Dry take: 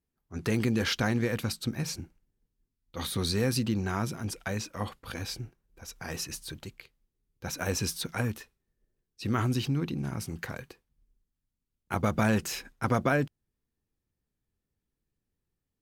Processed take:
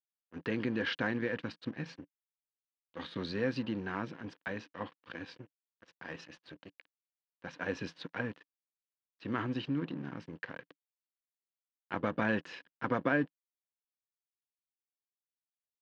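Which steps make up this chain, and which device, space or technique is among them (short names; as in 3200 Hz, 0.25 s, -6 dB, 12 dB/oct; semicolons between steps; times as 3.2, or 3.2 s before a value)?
blown loudspeaker (crossover distortion -43.5 dBFS; speaker cabinet 130–4200 Hz, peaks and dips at 170 Hz +4 dB, 290 Hz +10 dB, 510 Hz +7 dB, 1000 Hz +6 dB, 1700 Hz +10 dB, 2900 Hz +6 dB); gain -8.5 dB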